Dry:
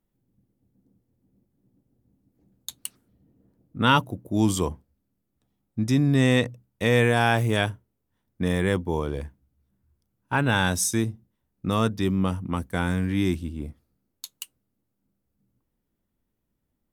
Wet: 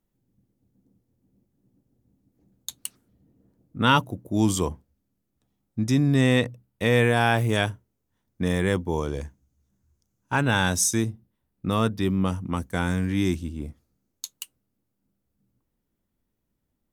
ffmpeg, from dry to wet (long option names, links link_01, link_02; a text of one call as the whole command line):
ffmpeg -i in.wav -af "asetnsamples=nb_out_samples=441:pad=0,asendcmd='6.21 equalizer g -3;7.49 equalizer g 5;8.98 equalizer g 14;10.42 equalizer g 5;11.1 equalizer g -4;12.26 equalizer g 7;14.32 equalizer g 1',equalizer=frequency=6500:width_type=o:width=0.51:gain=3" out.wav